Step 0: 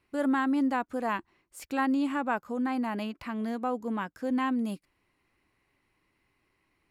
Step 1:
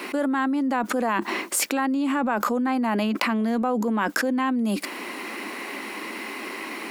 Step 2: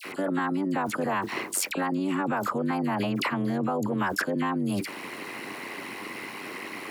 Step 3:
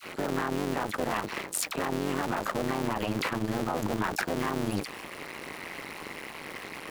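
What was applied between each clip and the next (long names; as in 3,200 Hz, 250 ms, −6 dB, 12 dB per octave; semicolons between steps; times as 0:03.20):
elliptic high-pass filter 210 Hz, stop band 40 dB; envelope flattener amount 100%; level +1.5 dB
amplitude modulation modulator 95 Hz, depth 80%; all-pass dispersion lows, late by 50 ms, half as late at 1,600 Hz
sub-harmonics by changed cycles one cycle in 2, muted; one half of a high-frequency compander decoder only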